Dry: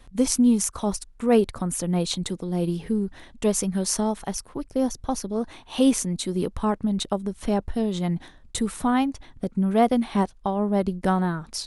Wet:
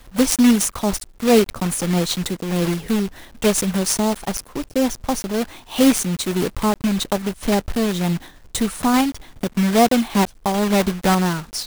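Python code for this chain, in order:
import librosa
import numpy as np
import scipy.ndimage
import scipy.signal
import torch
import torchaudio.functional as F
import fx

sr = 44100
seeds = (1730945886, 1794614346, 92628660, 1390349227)

y = fx.block_float(x, sr, bits=3)
y = F.gain(torch.from_numpy(y), 4.5).numpy()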